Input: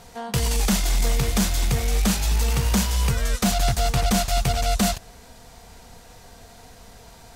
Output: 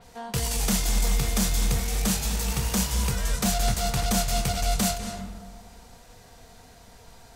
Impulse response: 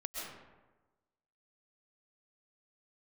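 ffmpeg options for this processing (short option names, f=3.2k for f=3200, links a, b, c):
-filter_complex "[0:a]asplit=2[a][b];[b]lowpass=10k[c];[1:a]atrim=start_sample=2205,asetrate=32634,aresample=44100,adelay=27[d];[c][d]afir=irnorm=-1:irlink=0,volume=-8dB[e];[a][e]amix=inputs=2:normalize=0,adynamicequalizer=threshold=0.0141:dfrequency=5100:dqfactor=0.7:tfrequency=5100:tqfactor=0.7:attack=5:release=100:ratio=0.375:range=2.5:mode=boostabove:tftype=highshelf,volume=-5dB"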